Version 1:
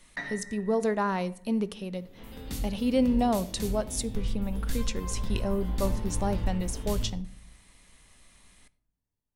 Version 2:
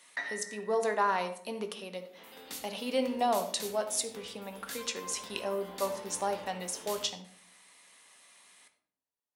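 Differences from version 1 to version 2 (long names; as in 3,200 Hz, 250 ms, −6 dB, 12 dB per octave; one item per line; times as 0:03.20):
speech: send +10.5 dB
master: add high-pass filter 530 Hz 12 dB per octave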